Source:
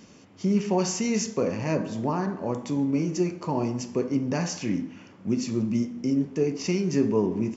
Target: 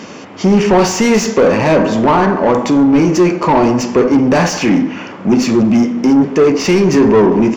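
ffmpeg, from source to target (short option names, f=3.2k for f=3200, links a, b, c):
-filter_complex "[0:a]acontrast=60,asplit=2[a][b];[b]highpass=f=720:p=1,volume=23dB,asoftclip=type=tanh:threshold=-6dB[c];[a][c]amix=inputs=2:normalize=0,lowpass=f=1.5k:p=1,volume=-6dB,volume=5dB"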